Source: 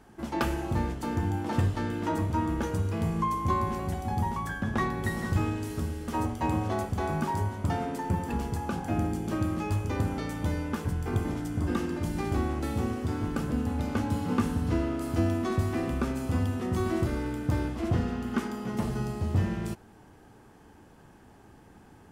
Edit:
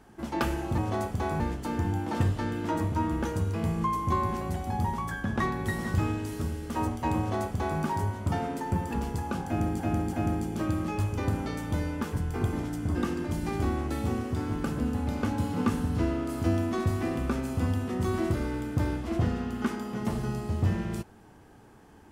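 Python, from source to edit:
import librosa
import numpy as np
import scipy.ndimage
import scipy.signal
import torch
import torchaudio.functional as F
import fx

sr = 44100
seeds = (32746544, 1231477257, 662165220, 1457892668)

y = fx.edit(x, sr, fx.duplicate(start_s=6.56, length_s=0.62, to_s=0.78),
    fx.repeat(start_s=8.85, length_s=0.33, count=3), tone=tone)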